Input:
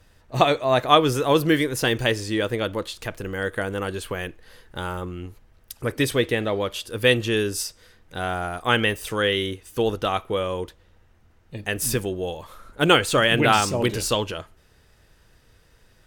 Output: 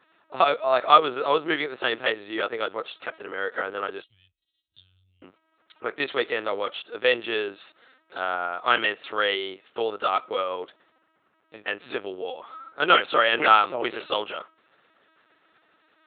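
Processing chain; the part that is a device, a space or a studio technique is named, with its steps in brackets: 4.02–5.23 Chebyshev band-stop 110–4400 Hz, order 3; high shelf 4600 Hz -4 dB; talking toy (LPC vocoder at 8 kHz pitch kept; HPF 450 Hz 12 dB/oct; bell 1300 Hz +7.5 dB 0.24 oct); gain -1 dB

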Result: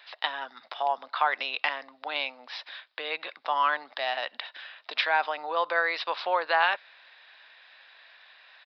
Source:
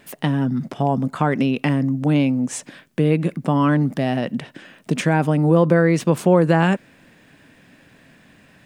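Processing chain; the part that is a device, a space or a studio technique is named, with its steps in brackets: musical greeting card (downsampling 11025 Hz; HPF 780 Hz 24 dB/oct; bell 3800 Hz +10.5 dB 0.24 oct)

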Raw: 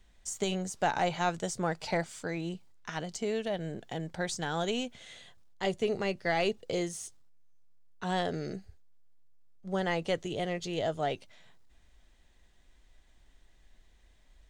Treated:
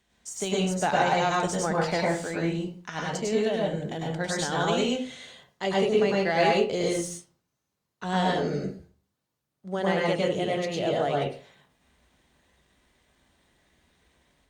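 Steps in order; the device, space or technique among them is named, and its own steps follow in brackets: far-field microphone of a smart speaker (reverb RT60 0.40 s, pre-delay 95 ms, DRR -3.5 dB; HPF 110 Hz; AGC gain up to 3.5 dB; gain -1.5 dB; Opus 48 kbps 48000 Hz)

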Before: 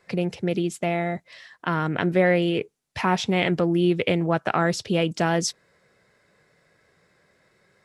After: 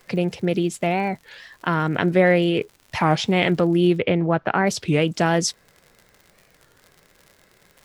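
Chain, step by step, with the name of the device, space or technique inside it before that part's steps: warped LP (record warp 33 1/3 rpm, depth 250 cents; crackle 65/s -39 dBFS; pink noise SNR 41 dB); 3.98–4.67 air absorption 260 m; gain +3 dB

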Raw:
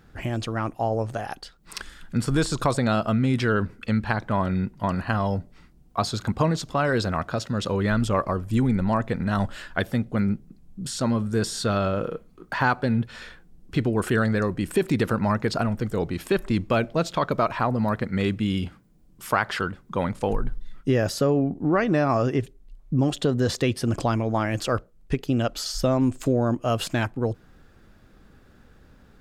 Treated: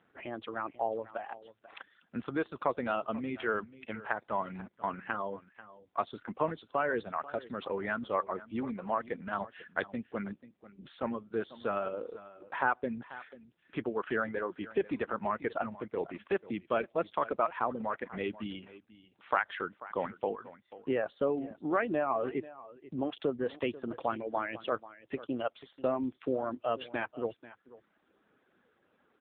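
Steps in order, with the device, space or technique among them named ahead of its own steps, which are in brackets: 3.57–5.35 bell 150 Hz -> 860 Hz -6 dB 0.38 oct; reverb removal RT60 0.93 s; satellite phone (BPF 330–3300 Hz; echo 0.489 s -17 dB; gain -5 dB; AMR-NB 6.7 kbps 8000 Hz)

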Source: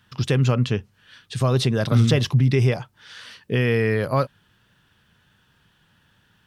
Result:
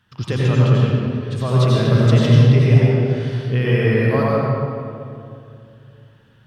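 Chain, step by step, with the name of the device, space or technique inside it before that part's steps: swimming-pool hall (reverb RT60 2.5 s, pre-delay 80 ms, DRR -5.5 dB; high shelf 4400 Hz -6 dB); gain -2.5 dB

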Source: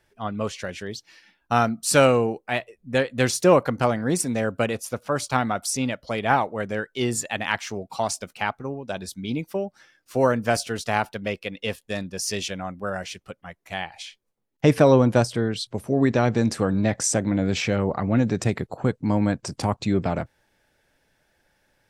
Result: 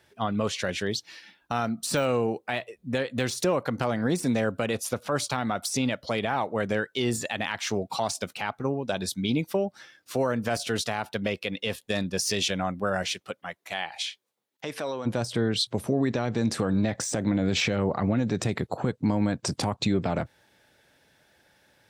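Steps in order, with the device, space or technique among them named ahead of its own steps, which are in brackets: broadcast voice chain (HPF 77 Hz; de-esser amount 55%; compressor 4:1, threshold -25 dBFS, peak gain reduction 12.5 dB; bell 3700 Hz +4.5 dB 0.43 oct; limiter -19.5 dBFS, peak gain reduction 9.5 dB); 13.08–15.05 HPF 260 Hz -> 960 Hz 6 dB/oct; gain +4.5 dB

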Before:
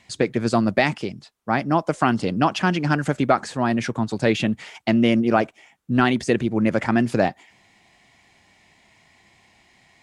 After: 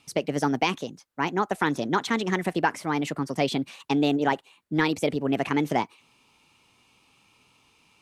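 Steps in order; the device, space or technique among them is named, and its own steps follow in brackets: nightcore (varispeed +25%); gain -5 dB

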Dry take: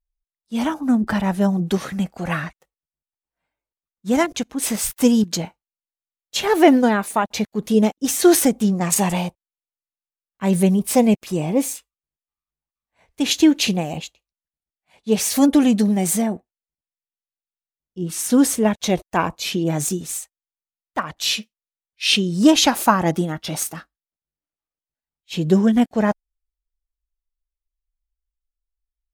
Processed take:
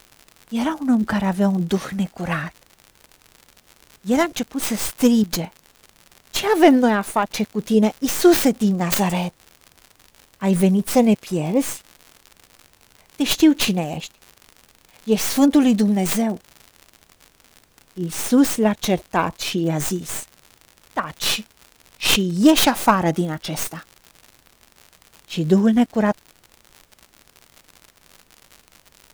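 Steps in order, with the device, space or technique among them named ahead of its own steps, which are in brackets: record under a worn stylus (tracing distortion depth 0.16 ms; crackle 100/s -30 dBFS; pink noise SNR 38 dB)

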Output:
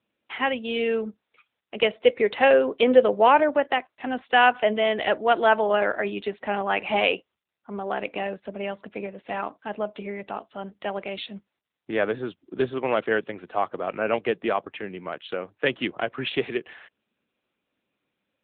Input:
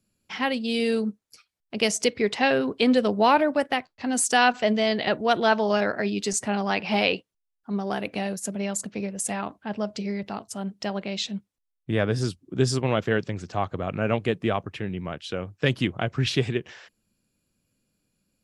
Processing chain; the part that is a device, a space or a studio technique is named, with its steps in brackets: 1.8–3.28 dynamic EQ 520 Hz, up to +7 dB, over -36 dBFS, Q 5.2; telephone (BPF 360–3500 Hz; gain +3 dB; AMR-NB 10.2 kbps 8000 Hz)

